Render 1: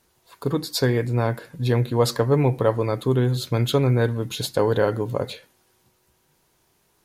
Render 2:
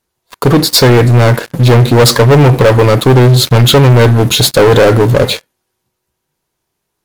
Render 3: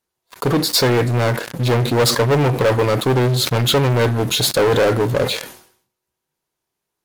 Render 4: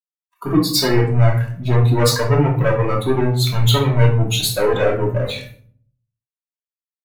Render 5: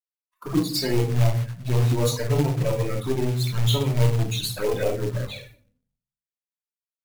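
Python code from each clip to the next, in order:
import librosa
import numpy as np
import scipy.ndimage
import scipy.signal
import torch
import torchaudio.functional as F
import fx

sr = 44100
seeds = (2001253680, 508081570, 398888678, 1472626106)

y1 = fx.leveller(x, sr, passes=5)
y1 = y1 * 10.0 ** (3.5 / 20.0)
y2 = fx.low_shelf(y1, sr, hz=160.0, db=-6.5)
y2 = fx.sustainer(y2, sr, db_per_s=98.0)
y2 = y2 * 10.0 ** (-8.0 / 20.0)
y3 = fx.bin_expand(y2, sr, power=2.0)
y3 = fx.room_shoebox(y3, sr, seeds[0], volume_m3=580.0, walls='furnished', distance_m=2.8)
y3 = y3 * 10.0 ** (-1.0 / 20.0)
y4 = fx.env_flanger(y3, sr, rest_ms=4.7, full_db=-12.0)
y4 = fx.quant_float(y4, sr, bits=2)
y4 = y4 * 10.0 ** (-6.0 / 20.0)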